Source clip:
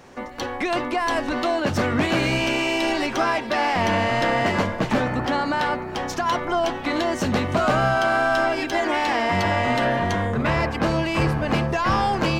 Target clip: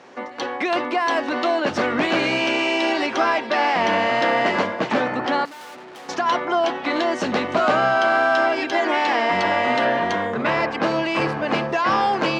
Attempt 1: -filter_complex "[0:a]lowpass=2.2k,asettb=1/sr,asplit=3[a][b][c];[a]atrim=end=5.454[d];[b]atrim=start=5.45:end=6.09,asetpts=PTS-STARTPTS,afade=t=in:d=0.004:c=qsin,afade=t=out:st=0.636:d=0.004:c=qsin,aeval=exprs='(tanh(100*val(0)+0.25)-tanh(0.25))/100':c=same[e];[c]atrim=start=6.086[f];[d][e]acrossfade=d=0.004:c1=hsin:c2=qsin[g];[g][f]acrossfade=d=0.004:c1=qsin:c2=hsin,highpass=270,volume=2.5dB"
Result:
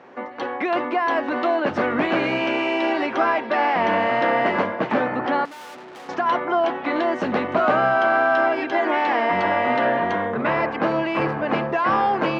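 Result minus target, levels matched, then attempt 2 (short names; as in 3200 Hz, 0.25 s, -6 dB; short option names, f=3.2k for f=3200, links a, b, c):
4000 Hz band -6.0 dB
-filter_complex "[0:a]lowpass=5.2k,asettb=1/sr,asplit=3[a][b][c];[a]atrim=end=5.454[d];[b]atrim=start=5.45:end=6.09,asetpts=PTS-STARTPTS,afade=t=in:d=0.004:c=qsin,afade=t=out:st=0.636:d=0.004:c=qsin,aeval=exprs='(tanh(100*val(0)+0.25)-tanh(0.25))/100':c=same[e];[c]atrim=start=6.086[f];[d][e]acrossfade=d=0.004:c1=hsin:c2=qsin[g];[g][f]acrossfade=d=0.004:c1=qsin:c2=hsin,highpass=270,volume=2.5dB"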